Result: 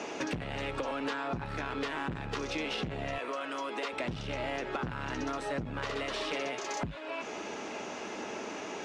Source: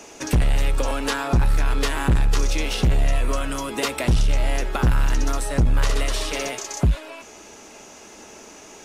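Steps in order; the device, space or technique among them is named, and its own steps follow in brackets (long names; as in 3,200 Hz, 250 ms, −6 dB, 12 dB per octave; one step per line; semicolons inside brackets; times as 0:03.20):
AM radio (band-pass filter 150–3,400 Hz; downward compressor 6 to 1, threshold −38 dBFS, peak gain reduction 19 dB; soft clipping −29 dBFS, distortion −21 dB)
0:03.18–0:03.93: high-pass filter 380 Hz 12 dB per octave
level +6 dB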